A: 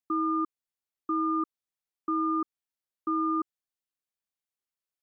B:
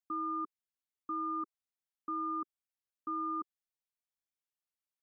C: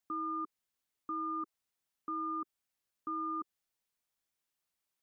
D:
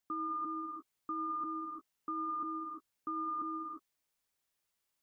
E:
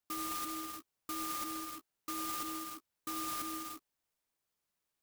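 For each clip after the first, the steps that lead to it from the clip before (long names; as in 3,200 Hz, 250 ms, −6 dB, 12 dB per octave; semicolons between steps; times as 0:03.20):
parametric band 360 Hz −14.5 dB 0.24 octaves; level −6.5 dB
brickwall limiter −38 dBFS, peak gain reduction 8 dB; level +7 dB
reverb whose tail is shaped and stops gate 380 ms rising, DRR 0 dB
converter with an unsteady clock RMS 0.11 ms; level −1.5 dB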